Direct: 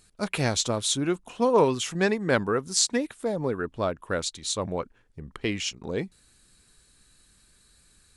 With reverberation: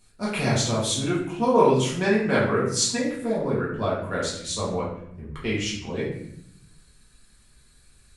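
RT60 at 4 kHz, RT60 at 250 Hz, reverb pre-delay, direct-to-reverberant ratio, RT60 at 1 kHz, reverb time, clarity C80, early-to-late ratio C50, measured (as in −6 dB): 0.55 s, 1.1 s, 4 ms, −8.0 dB, 0.65 s, 0.70 s, 6.5 dB, 3.0 dB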